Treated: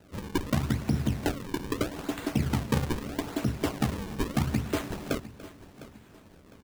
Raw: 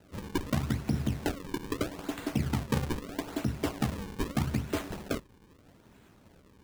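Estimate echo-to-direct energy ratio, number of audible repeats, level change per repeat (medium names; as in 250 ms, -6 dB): -14.5 dB, 3, no regular repeats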